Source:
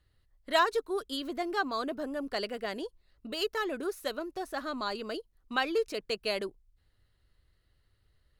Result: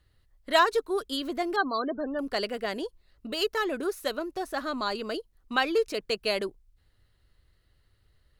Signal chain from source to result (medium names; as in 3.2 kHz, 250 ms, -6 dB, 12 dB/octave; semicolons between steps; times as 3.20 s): 1.56–2.19 s: loudest bins only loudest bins 32; trim +4 dB